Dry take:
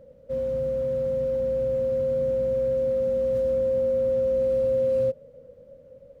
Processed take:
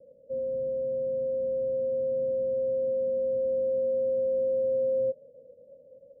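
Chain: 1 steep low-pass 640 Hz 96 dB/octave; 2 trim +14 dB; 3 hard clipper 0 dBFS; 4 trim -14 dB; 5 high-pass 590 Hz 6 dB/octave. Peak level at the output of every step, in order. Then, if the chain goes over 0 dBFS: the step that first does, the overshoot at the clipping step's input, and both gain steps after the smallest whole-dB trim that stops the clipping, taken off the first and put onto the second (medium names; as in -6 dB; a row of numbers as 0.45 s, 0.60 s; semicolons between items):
-17.0 dBFS, -3.0 dBFS, -3.0 dBFS, -17.0 dBFS, -22.0 dBFS; nothing clips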